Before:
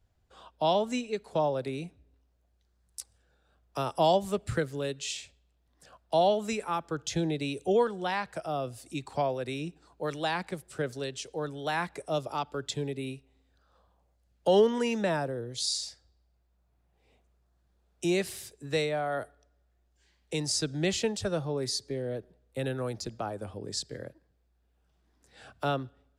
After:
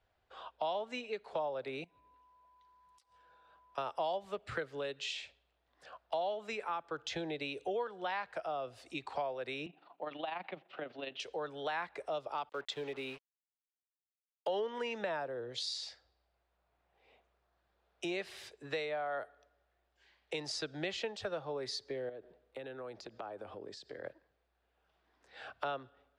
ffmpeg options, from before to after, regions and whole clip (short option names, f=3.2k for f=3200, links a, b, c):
-filter_complex "[0:a]asettb=1/sr,asplit=3[a][b][c];[a]atrim=end=1.844[d];[b]atrim=start=1.84:end=3.78,asetpts=PTS-STARTPTS,afade=t=in:d=0.004:c=qsin,afade=t=out:st=1.936:d=0.004:c=qsin,aeval=exprs='val(0)+0.000355*sin(2*PI*1000*n/s)':c=same,acompressor=threshold=-58dB:ratio=8:attack=3.2:release=140:knee=1:detection=peak,aecho=1:1:6.2:0.36,atrim=end_sample=85554[e];[c]atrim=start=3.776[f];[d][e]acrossfade=d=0.004:c1=hsin:c2=qsin[g];[g][f]acrossfade=d=0.004:c1=qsin:c2=hsin,asettb=1/sr,asplit=3[h][i][j];[h]atrim=end=9.664[k];[i]atrim=start=9.66:end=11.2,asetpts=PTS-STARTPTS,afade=t=in:d=0.004:c=qsin,afade=t=out:st=1.536:d=0.004:c=qsin,highpass=f=160:w=0.5412,highpass=f=160:w=1.3066,equalizer=f=170:t=q:w=4:g=3,equalizer=f=290:t=q:w=4:g=5,equalizer=f=440:t=q:w=4:g=-7,equalizer=f=710:t=q:w=4:g=6,equalizer=f=1.6k:t=q:w=4:g=-6,equalizer=f=2.8k:t=q:w=4:g=5,lowpass=f=3.6k:w=0.5412,lowpass=f=3.6k:w=1.3066,acompressor=threshold=-36dB:ratio=2:attack=3.2:release=140:knee=1:detection=peak,tremolo=f=24:d=0.571[l];[j]atrim=start=11.196[m];[k][l]acrossfade=d=0.004:c1=hsin:c2=qsin[n];[n][m]acrossfade=d=0.004:c1=qsin:c2=hsin,asettb=1/sr,asplit=3[o][p][q];[o]atrim=end=12.494[r];[p]atrim=start=12.49:end=14.49,asetpts=PTS-STARTPTS,afade=t=in:d=0.004:c=qsin,afade=t=out:st=1.996:d=0.004:c=qsin,lowshelf=f=110:g=-11.5,acrusher=bits=7:mix=0:aa=0.5[s];[q]atrim=start=14.486[t];[r][s]acrossfade=d=0.004:c1=hsin:c2=qsin[u];[u][t]acrossfade=d=0.004:c1=qsin:c2=hsin,asettb=1/sr,asplit=3[v][w][x];[v]atrim=end=22.094[y];[w]atrim=start=22.09:end=24.04,asetpts=PTS-STARTPTS,afade=t=in:d=0.004:c=qsin,afade=t=out:st=1.946:d=0.004:c=qsin,acompressor=threshold=-44dB:ratio=6:attack=3.2:release=140:knee=1:detection=peak,equalizer=f=310:t=o:w=1.5:g=5[z];[x]atrim=start=24.036[aa];[y][z]acrossfade=d=0.004:c1=hsin:c2=qsin[ab];[ab][aa]acrossfade=d=0.004:c1=qsin:c2=hsin,acrossover=split=430 4200:gain=0.158 1 0.0794[ac][ad][ae];[ac][ad][ae]amix=inputs=3:normalize=0,acompressor=threshold=-42dB:ratio=3,volume=4.5dB"